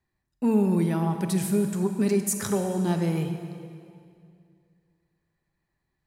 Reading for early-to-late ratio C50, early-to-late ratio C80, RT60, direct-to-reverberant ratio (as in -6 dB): 7.0 dB, 8.0 dB, 2.3 s, 6.5 dB